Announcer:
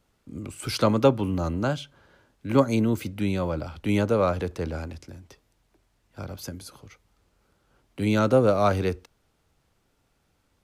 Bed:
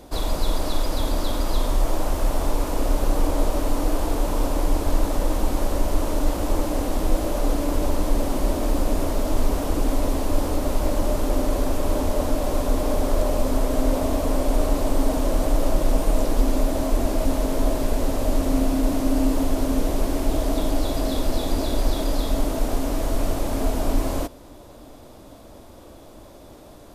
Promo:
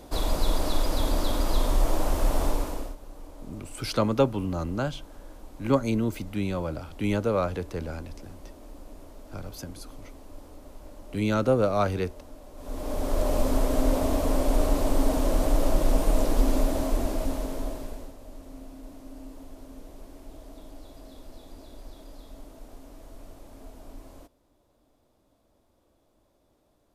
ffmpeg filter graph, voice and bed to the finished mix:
-filter_complex "[0:a]adelay=3150,volume=-3dB[a];[1:a]volume=19dB,afade=t=out:st=2.44:d=0.52:silence=0.0841395,afade=t=in:st=12.56:d=0.81:silence=0.0891251,afade=t=out:st=16.56:d=1.59:silence=0.0944061[b];[a][b]amix=inputs=2:normalize=0"

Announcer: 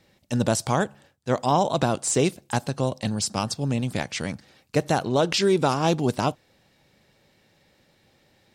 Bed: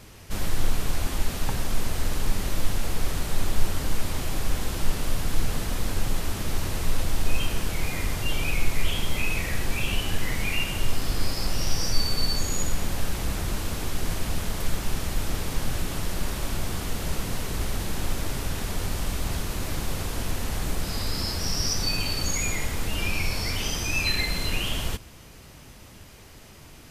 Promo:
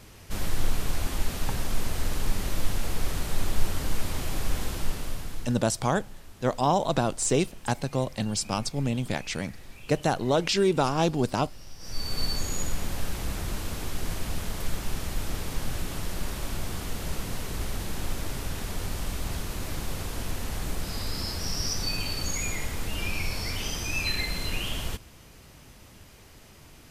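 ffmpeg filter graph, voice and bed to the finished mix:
-filter_complex "[0:a]adelay=5150,volume=-2.5dB[a];[1:a]volume=14.5dB,afade=t=out:st=4.62:d=0.99:silence=0.125893,afade=t=in:st=11.79:d=0.42:silence=0.149624[b];[a][b]amix=inputs=2:normalize=0"

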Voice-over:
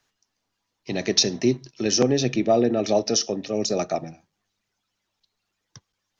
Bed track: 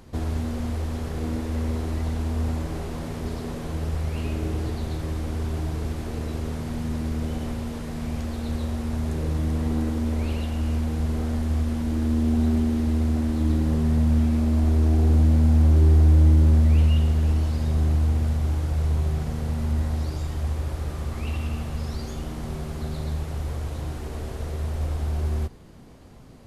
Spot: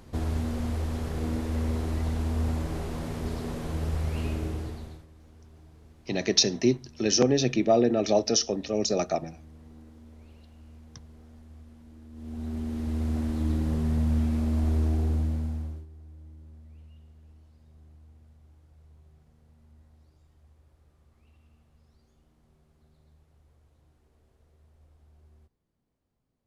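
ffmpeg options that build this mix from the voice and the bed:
-filter_complex "[0:a]adelay=5200,volume=-2dB[a];[1:a]volume=18dB,afade=t=out:st=4.25:d=0.81:silence=0.0707946,afade=t=in:st=12.12:d=1.05:silence=0.1,afade=t=out:st=14.77:d=1.09:silence=0.0421697[b];[a][b]amix=inputs=2:normalize=0"

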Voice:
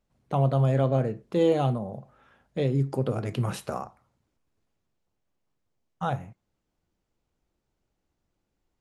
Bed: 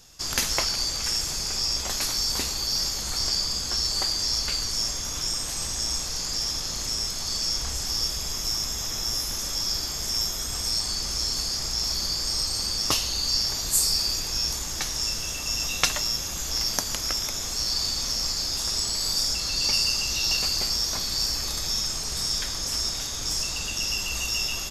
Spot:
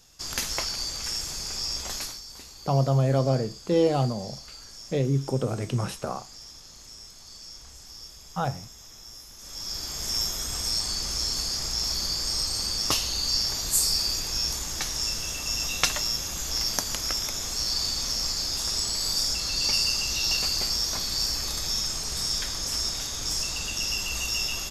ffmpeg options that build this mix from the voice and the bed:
-filter_complex "[0:a]adelay=2350,volume=0.5dB[a];[1:a]volume=11.5dB,afade=t=out:st=1.96:d=0.25:silence=0.237137,afade=t=in:st=9.37:d=0.76:silence=0.158489[b];[a][b]amix=inputs=2:normalize=0"

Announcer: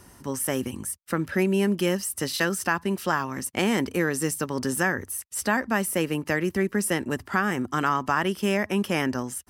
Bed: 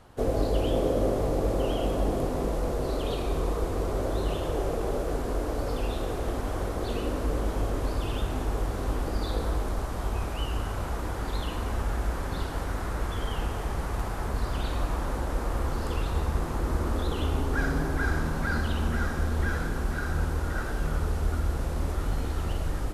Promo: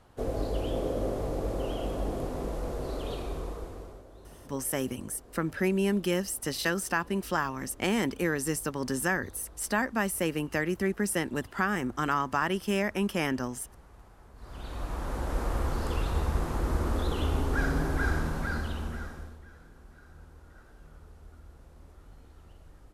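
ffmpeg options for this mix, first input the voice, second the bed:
-filter_complex "[0:a]adelay=4250,volume=-4dB[a];[1:a]volume=16.5dB,afade=t=out:st=3.15:d=0.89:silence=0.133352,afade=t=in:st=14.36:d=1.04:silence=0.0794328,afade=t=out:st=18.07:d=1.33:silence=0.0749894[b];[a][b]amix=inputs=2:normalize=0"

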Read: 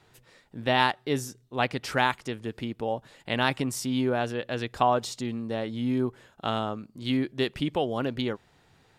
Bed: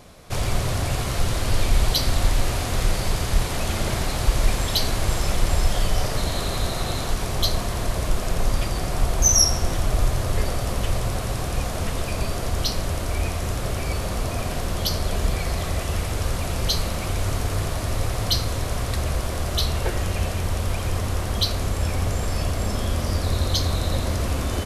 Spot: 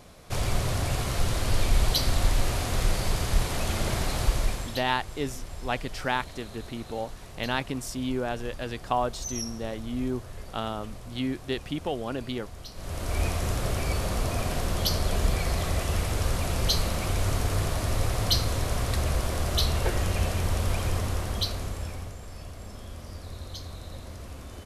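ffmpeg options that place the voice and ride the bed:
-filter_complex "[0:a]adelay=4100,volume=-3.5dB[a];[1:a]volume=13dB,afade=t=out:st=4.22:d=0.61:silence=0.177828,afade=t=in:st=12.74:d=0.48:silence=0.149624,afade=t=out:st=20.78:d=1.38:silence=0.177828[b];[a][b]amix=inputs=2:normalize=0"

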